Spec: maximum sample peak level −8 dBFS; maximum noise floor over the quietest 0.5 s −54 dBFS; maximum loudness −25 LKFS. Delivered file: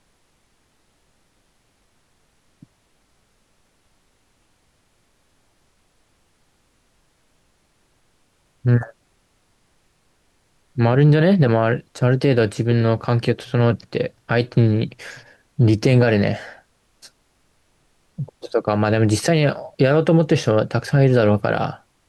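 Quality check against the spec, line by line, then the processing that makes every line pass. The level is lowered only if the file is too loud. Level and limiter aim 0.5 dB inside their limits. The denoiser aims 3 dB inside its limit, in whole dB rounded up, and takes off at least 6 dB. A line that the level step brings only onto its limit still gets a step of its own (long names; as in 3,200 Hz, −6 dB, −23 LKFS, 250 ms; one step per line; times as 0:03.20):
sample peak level −5.5 dBFS: out of spec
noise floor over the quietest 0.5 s −63 dBFS: in spec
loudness −18.5 LKFS: out of spec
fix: level −7 dB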